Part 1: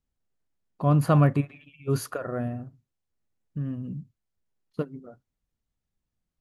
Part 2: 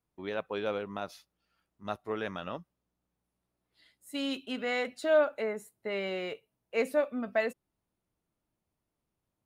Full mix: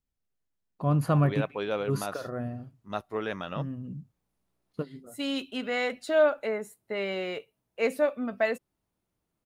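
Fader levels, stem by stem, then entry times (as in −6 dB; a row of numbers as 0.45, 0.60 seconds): −4.0, +2.5 decibels; 0.00, 1.05 seconds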